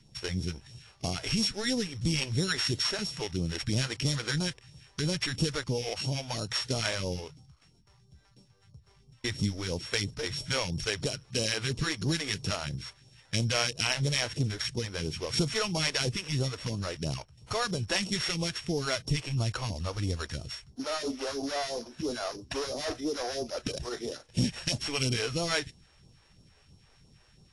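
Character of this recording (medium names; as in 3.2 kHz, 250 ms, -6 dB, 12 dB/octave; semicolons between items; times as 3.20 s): a buzz of ramps at a fixed pitch in blocks of 8 samples; phasing stages 2, 3 Hz, lowest notch 140–1800 Hz; AAC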